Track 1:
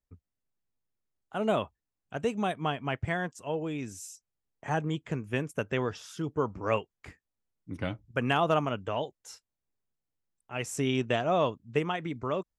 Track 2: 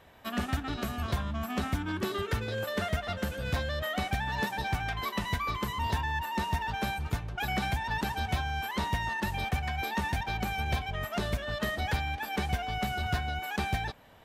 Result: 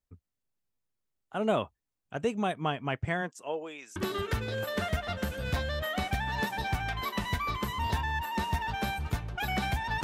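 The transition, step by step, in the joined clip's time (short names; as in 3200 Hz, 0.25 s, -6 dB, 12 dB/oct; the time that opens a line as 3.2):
track 1
3.21–3.96 HPF 160 Hz -> 1200 Hz
3.96 switch to track 2 from 1.96 s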